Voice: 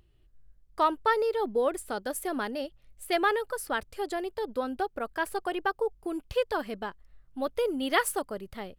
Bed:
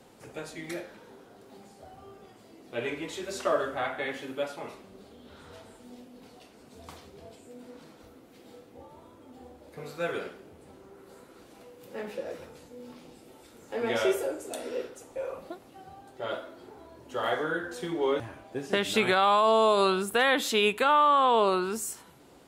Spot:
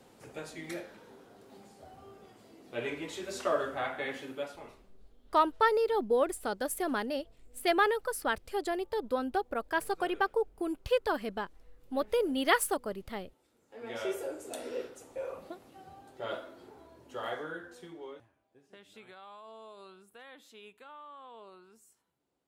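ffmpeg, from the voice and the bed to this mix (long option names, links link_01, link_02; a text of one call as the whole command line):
ffmpeg -i stem1.wav -i stem2.wav -filter_complex "[0:a]adelay=4550,volume=-0.5dB[link_01];[1:a]volume=12dB,afade=type=out:start_time=4.17:duration=0.8:silence=0.16788,afade=type=in:start_time=13.7:duration=0.85:silence=0.177828,afade=type=out:start_time=16.51:duration=1.79:silence=0.0595662[link_02];[link_01][link_02]amix=inputs=2:normalize=0" out.wav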